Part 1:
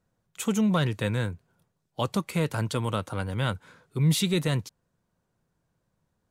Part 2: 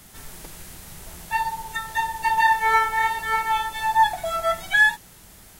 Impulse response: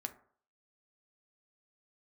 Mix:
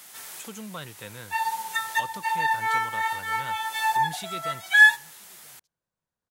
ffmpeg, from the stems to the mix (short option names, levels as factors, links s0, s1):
-filter_complex "[0:a]volume=0.398,asplit=3[s0][s1][s2];[s1]volume=0.0708[s3];[1:a]highpass=f=490:p=1,volume=1.06,asplit=2[s4][s5];[s5]volume=0.447[s6];[s2]apad=whole_len=246717[s7];[s4][s7]sidechaincompress=threshold=0.00501:ratio=8:attack=42:release=222[s8];[2:a]atrim=start_sample=2205[s9];[s6][s9]afir=irnorm=-1:irlink=0[s10];[s3]aecho=0:1:983:1[s11];[s0][s8][s10][s11]amix=inputs=4:normalize=0,lowshelf=f=460:g=-11"